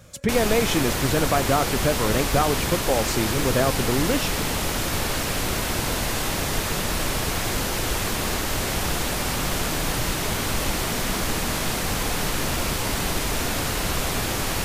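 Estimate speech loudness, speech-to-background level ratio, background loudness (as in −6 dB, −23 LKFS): −24.5 LKFS, 0.0 dB, −24.5 LKFS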